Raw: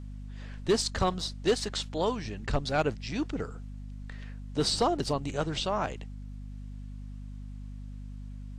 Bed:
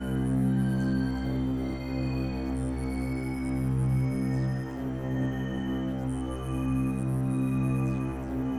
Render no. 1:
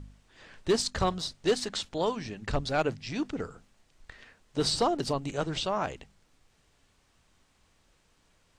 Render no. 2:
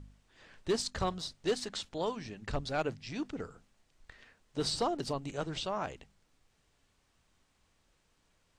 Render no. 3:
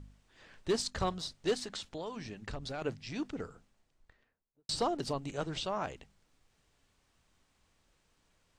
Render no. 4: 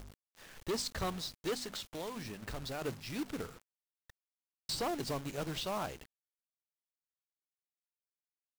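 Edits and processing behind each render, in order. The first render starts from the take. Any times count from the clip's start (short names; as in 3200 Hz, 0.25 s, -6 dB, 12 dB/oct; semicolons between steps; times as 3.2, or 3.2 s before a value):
de-hum 50 Hz, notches 5
gain -5.5 dB
1.56–2.82 compressor, threshold -36 dBFS; 3.37–4.69 studio fade out
soft clip -31 dBFS, distortion -11 dB; companded quantiser 4-bit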